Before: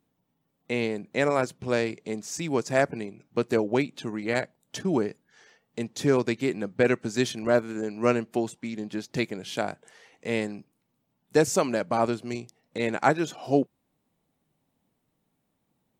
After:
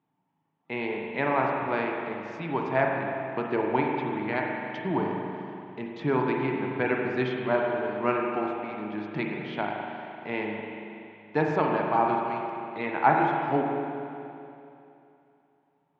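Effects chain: speaker cabinet 150–3000 Hz, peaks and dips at 150 Hz +5 dB, 220 Hz -6 dB, 510 Hz -9 dB, 900 Hz +10 dB; spring tank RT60 2.8 s, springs 38/47 ms, chirp 60 ms, DRR -0.5 dB; gain -2.5 dB

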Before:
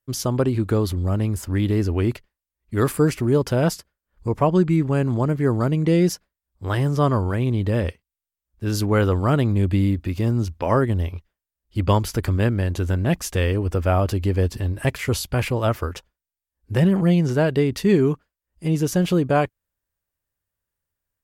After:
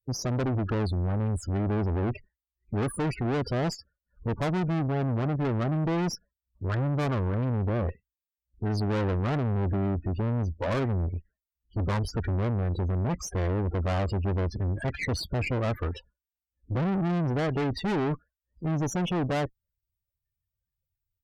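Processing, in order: loudest bins only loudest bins 16; tube stage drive 28 dB, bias 0.4; gain +3 dB

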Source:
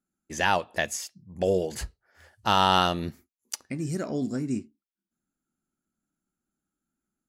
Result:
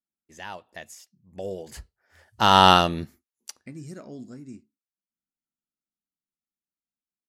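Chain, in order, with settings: Doppler pass-by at 2.65, 8 m/s, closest 1.5 m; gain +7 dB

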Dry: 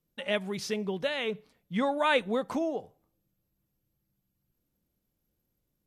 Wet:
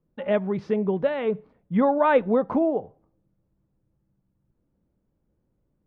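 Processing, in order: LPF 1100 Hz 12 dB/oct; notch 730 Hz, Q 24; gain +8.5 dB

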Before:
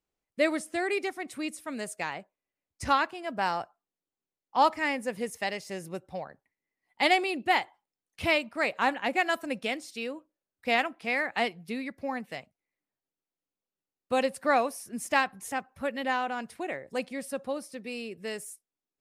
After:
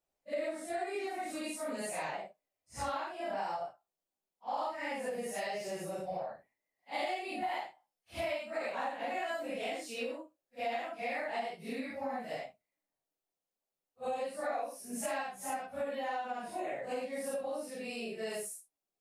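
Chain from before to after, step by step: phase scrambler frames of 0.2 s; bell 660 Hz +10 dB 0.86 oct; compressor 6:1, threshold -31 dBFS, peak gain reduction 17 dB; high shelf 4500 Hz +5 dB; gain -3.5 dB

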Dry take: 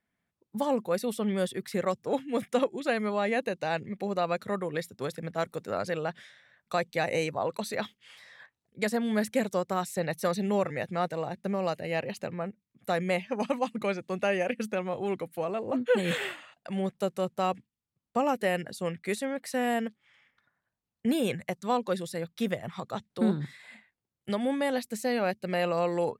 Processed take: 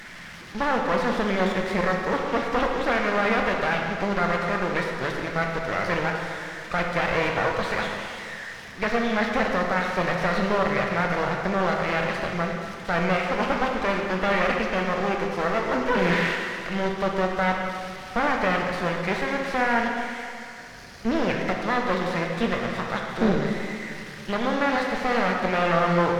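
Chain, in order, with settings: delta modulation 32 kbps, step -42.5 dBFS; spectral gain 20.25–21.29, 780–4100 Hz -6 dB; half-wave rectifier; bell 1800 Hz +10 dB 1.2 oct; plate-style reverb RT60 2.4 s, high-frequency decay 0.9×, DRR 0.5 dB; gain +6.5 dB

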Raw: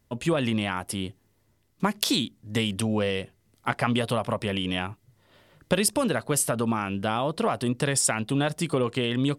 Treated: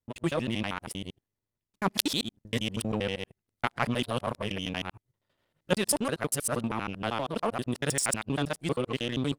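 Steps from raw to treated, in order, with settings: local time reversal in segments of 79 ms; power-law curve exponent 1.4; gain +2 dB

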